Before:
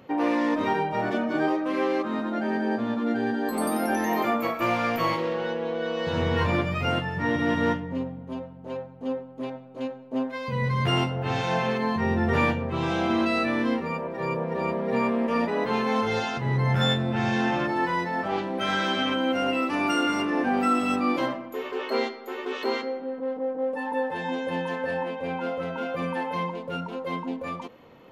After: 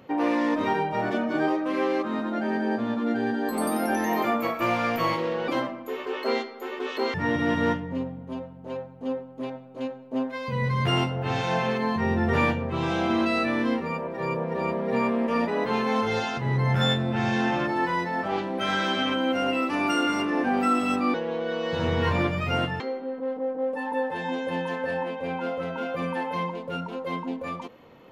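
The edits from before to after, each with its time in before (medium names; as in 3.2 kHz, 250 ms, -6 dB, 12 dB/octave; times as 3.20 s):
5.48–7.14 s: swap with 21.14–22.80 s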